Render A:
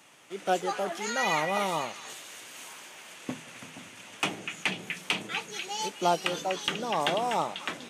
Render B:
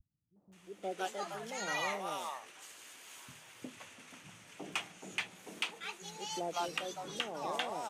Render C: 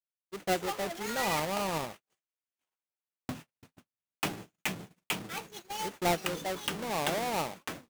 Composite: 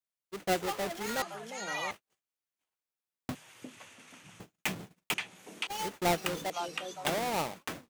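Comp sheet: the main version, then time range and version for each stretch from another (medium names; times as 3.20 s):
C
1.22–1.91 s: from B
3.35–4.40 s: from B
5.14–5.67 s: from B
6.50–7.05 s: from B
not used: A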